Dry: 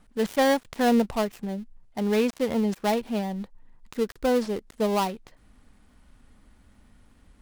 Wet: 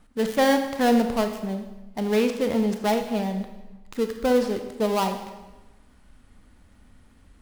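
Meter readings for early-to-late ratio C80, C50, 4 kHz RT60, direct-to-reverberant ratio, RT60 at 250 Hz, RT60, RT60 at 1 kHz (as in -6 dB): 10.0 dB, 8.0 dB, 1.0 s, 6.0 dB, 1.1 s, 1.1 s, 1.1 s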